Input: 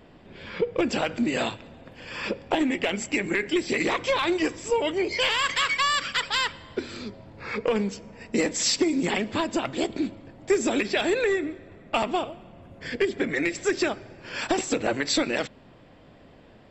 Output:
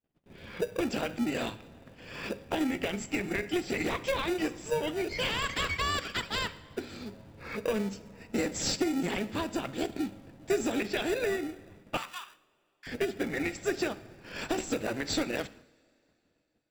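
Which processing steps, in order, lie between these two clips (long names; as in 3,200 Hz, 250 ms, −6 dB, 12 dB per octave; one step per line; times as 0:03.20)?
in parallel at −6 dB: decimation without filtering 41×
0:11.97–0:12.87: on the sum: Butterworth high-pass 1,000 Hz 48 dB per octave
noise gate −45 dBFS, range −39 dB
coupled-rooms reverb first 0.64 s, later 3.2 s, from −20 dB, DRR 14.5 dB
level −8 dB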